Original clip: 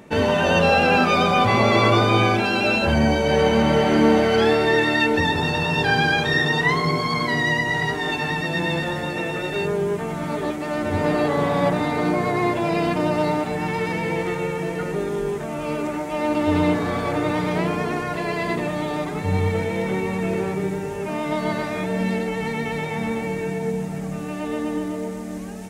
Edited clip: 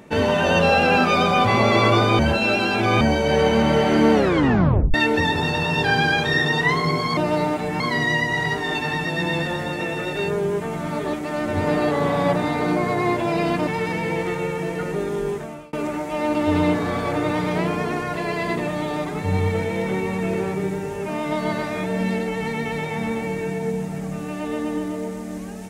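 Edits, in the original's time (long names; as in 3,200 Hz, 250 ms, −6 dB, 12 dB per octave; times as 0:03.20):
0:02.19–0:03.01: reverse
0:04.14: tape stop 0.80 s
0:13.04–0:13.67: move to 0:07.17
0:15.32–0:15.73: fade out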